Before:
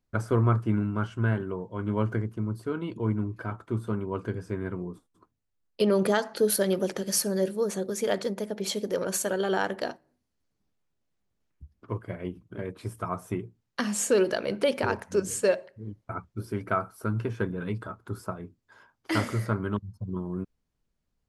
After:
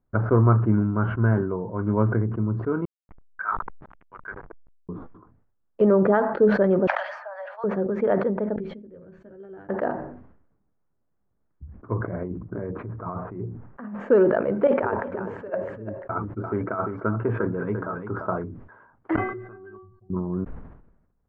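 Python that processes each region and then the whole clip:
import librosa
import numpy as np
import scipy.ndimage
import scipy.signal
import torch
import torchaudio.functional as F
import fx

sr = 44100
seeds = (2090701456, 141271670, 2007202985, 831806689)

y = fx.chain(x, sr, fx.filter_lfo_highpass(shape='saw_down', hz=1.2, low_hz=830.0, high_hz=6000.0, q=3.1),
    fx.backlash(play_db=-39.5), at=(2.85, 4.89))
y = fx.chain(y, sr, fx.steep_highpass(hz=640.0, slope=72),
    fx.band_squash(depth_pct=100), at=(6.87, 7.64))
y = fx.chain(y, sr, fx.tone_stack(knobs='10-0-1'),
    fx.doubler(ms=13.0, db=-5), at=(8.56, 9.69))
y = fx.chain(y, sr, fx.lowpass(hz=2100.0, slope=12),
    fx.over_compress(threshold_db=-37.0, ratio=-1.0), at=(12.0, 14.0))
y = fx.chain(y, sr, fx.bass_treble(bass_db=-8, treble_db=-1),
    fx.over_compress(threshold_db=-29.0, ratio=-0.5),
    fx.echo_single(ms=345, db=-10.0), at=(14.67, 18.44))
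y = fx.chain(y, sr, fx.air_absorb(metres=100.0),
    fx.stiff_resonator(f0_hz=370.0, decay_s=0.31, stiffness=0.008), at=(19.16, 20.1))
y = scipy.signal.sosfilt(scipy.signal.butter(4, 1500.0, 'lowpass', fs=sr, output='sos'), y)
y = fx.sustainer(y, sr, db_per_s=63.0)
y = F.gain(torch.from_numpy(y), 5.0).numpy()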